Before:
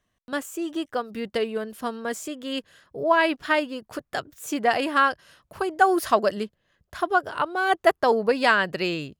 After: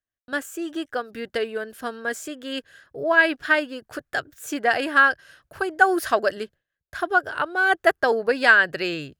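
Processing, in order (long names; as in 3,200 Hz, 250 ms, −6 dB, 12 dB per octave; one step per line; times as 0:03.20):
noise gate with hold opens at −49 dBFS
thirty-one-band graphic EQ 200 Hz −10 dB, 1,000 Hz −6 dB, 1,600 Hz +9 dB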